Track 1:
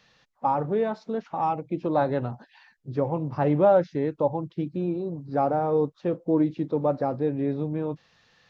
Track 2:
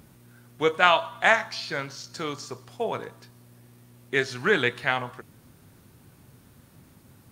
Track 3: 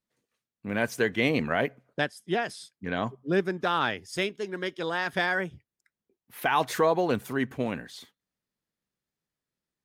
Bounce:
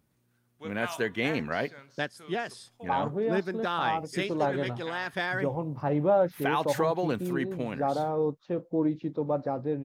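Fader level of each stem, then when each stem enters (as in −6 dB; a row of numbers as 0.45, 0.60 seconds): −4.5, −19.0, −4.0 decibels; 2.45, 0.00, 0.00 seconds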